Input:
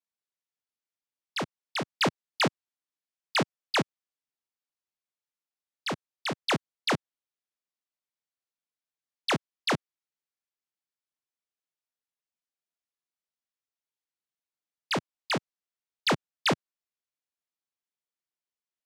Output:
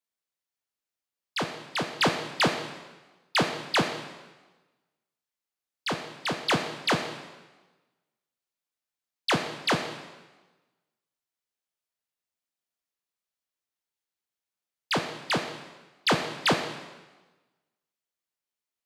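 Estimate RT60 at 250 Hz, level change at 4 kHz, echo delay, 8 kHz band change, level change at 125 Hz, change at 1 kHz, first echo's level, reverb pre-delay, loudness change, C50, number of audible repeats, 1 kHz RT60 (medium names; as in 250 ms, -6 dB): 1.2 s, +3.0 dB, no echo, +3.0 dB, +2.0 dB, +3.0 dB, no echo, 6 ms, +2.5 dB, 6.5 dB, no echo, 1.2 s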